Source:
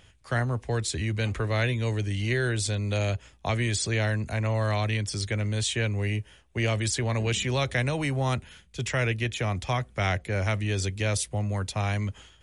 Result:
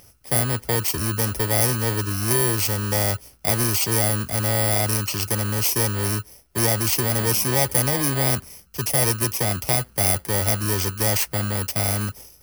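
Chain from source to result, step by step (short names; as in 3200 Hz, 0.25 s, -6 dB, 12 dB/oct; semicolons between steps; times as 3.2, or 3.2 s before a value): FFT order left unsorted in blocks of 32 samples; low shelf 170 Hz -8.5 dB; gain +8 dB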